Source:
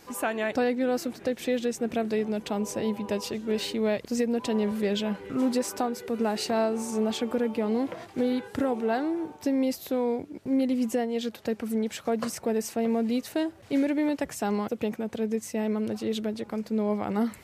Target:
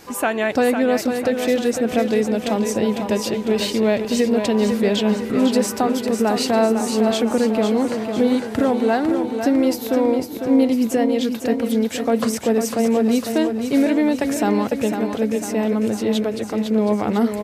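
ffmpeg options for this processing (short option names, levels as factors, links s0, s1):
-af "aecho=1:1:501|1002|1503|2004|2505|3006|3507:0.447|0.241|0.13|0.0703|0.038|0.0205|0.0111,volume=2.51"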